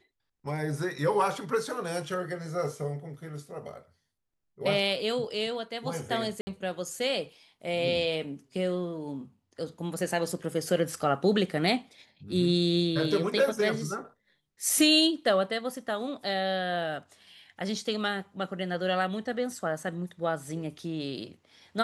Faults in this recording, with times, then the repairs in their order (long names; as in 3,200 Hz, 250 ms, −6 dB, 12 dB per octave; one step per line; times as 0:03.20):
0:06.41–0:06.47: drop-out 60 ms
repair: repair the gap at 0:06.41, 60 ms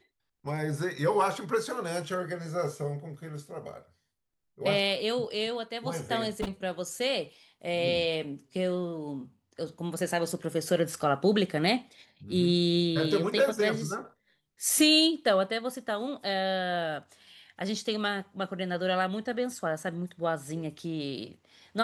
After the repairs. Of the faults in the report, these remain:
none of them is left